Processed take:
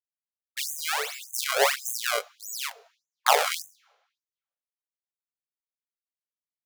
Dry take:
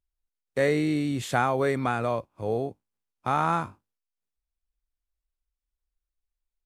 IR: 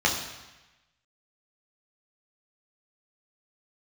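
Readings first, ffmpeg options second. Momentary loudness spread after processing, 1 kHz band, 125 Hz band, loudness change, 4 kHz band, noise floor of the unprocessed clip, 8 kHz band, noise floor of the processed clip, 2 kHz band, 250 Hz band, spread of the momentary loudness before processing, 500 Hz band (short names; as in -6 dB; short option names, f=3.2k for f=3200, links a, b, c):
12 LU, -0.5 dB, under -40 dB, +0.5 dB, +12.5 dB, under -85 dBFS, +15.0 dB, under -85 dBFS, +3.5 dB, under -25 dB, 10 LU, -4.0 dB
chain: -filter_complex "[0:a]agate=range=-33dB:threshold=-41dB:ratio=3:detection=peak,bass=f=250:g=0,treble=f=4k:g=-5,acrossover=split=110[a][b];[b]dynaudnorm=f=520:g=3:m=9dB[c];[a][c]amix=inputs=2:normalize=0,acrusher=samples=28:mix=1:aa=0.000001:lfo=1:lforange=44.8:lforate=1.5,asplit=2[d][e];[1:a]atrim=start_sample=2205[f];[e][f]afir=irnorm=-1:irlink=0,volume=-34dB[g];[d][g]amix=inputs=2:normalize=0,afftfilt=real='re*gte(b*sr/1024,400*pow(6200/400,0.5+0.5*sin(2*PI*1.7*pts/sr)))':imag='im*gte(b*sr/1024,400*pow(6200/400,0.5+0.5*sin(2*PI*1.7*pts/sr)))':win_size=1024:overlap=0.75"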